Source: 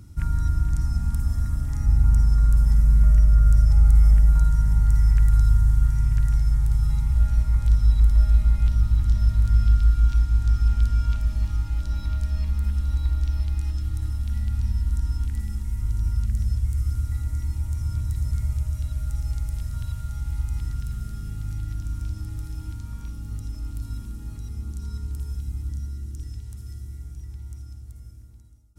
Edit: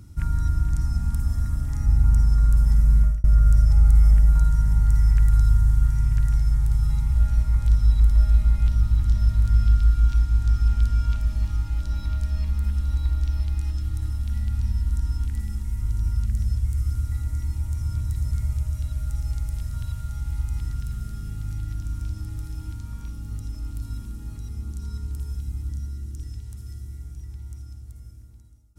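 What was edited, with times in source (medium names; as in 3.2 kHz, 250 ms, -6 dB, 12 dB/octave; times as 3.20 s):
2.99–3.24 s: fade out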